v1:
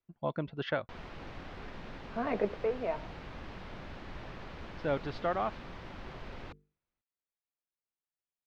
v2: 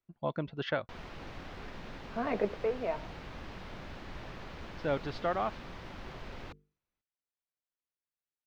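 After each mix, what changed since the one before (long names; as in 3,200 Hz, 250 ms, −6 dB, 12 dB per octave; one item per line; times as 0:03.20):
master: add high-shelf EQ 7,100 Hz +10 dB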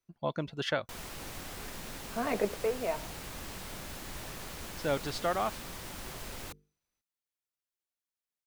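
master: remove high-frequency loss of the air 250 metres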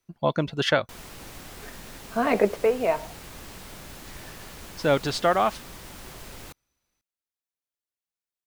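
speech +9.5 dB
background: remove mains-hum notches 50/100/150/200/250/300/350/400/450 Hz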